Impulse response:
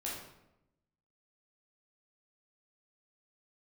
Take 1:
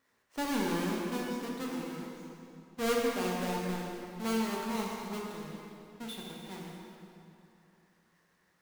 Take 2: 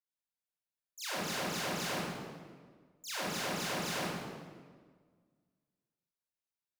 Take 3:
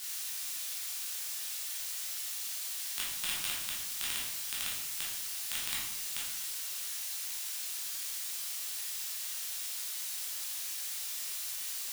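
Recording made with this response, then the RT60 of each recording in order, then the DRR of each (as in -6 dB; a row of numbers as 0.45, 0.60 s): 3; 2.8, 1.6, 0.90 s; -2.5, -11.0, -6.0 dB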